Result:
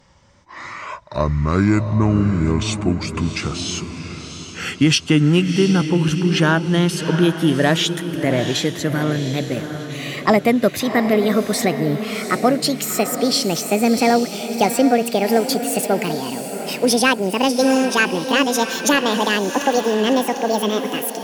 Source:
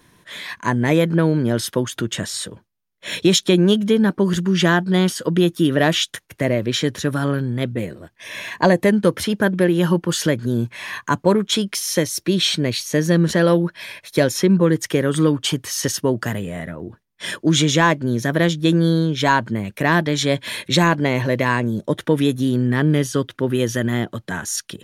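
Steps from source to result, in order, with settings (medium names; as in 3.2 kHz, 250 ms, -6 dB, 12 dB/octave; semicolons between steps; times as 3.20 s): gliding tape speed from 53% -> 181%; echo that smears into a reverb 716 ms, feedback 42%, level -8.5 dB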